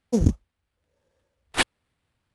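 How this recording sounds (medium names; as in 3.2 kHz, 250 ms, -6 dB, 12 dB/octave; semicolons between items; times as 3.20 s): aliases and images of a low sample rate 6.3 kHz, jitter 20%; AAC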